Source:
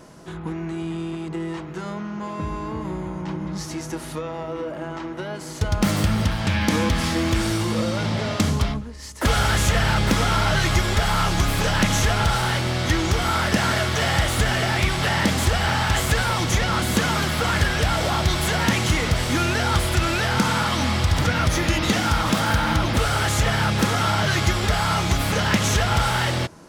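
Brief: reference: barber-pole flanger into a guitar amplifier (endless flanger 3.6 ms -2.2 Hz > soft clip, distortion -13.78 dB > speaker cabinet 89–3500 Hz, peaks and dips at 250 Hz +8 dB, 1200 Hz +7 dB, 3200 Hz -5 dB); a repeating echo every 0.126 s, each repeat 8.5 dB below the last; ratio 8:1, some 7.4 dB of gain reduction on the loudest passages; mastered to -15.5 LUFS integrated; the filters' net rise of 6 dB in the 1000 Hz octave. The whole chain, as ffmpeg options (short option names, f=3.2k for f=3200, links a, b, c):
-filter_complex "[0:a]equalizer=f=1k:t=o:g=4,acompressor=threshold=-22dB:ratio=8,aecho=1:1:126|252|378|504:0.376|0.143|0.0543|0.0206,asplit=2[a][b];[b]adelay=3.6,afreqshift=-2.2[c];[a][c]amix=inputs=2:normalize=1,asoftclip=threshold=-25.5dB,highpass=89,equalizer=f=250:t=q:w=4:g=8,equalizer=f=1.2k:t=q:w=4:g=7,equalizer=f=3.2k:t=q:w=4:g=-5,lowpass=f=3.5k:w=0.5412,lowpass=f=3.5k:w=1.3066,volume=15dB"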